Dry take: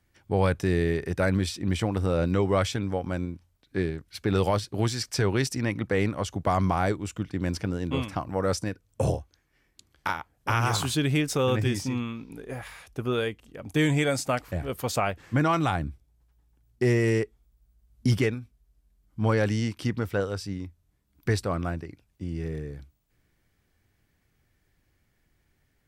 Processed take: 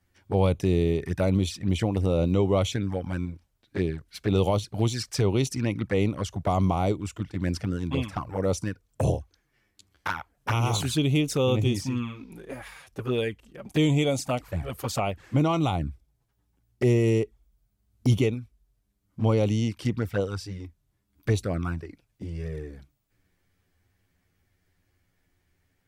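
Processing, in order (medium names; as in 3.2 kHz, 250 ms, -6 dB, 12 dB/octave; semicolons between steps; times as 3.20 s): touch-sensitive flanger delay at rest 11.3 ms, full sweep at -22 dBFS; trim +2 dB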